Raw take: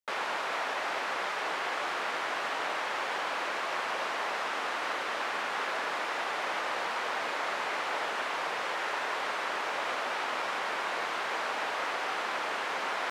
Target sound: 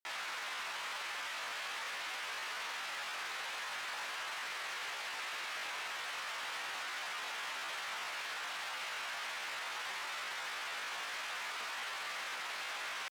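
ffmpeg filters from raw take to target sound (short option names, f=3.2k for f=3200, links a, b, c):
-af "asetrate=68011,aresample=44100,atempo=0.64842,asoftclip=type=tanh:threshold=-32dB,highpass=f=150:p=1,lowshelf=f=290:g=-4.5,volume=-4.5dB"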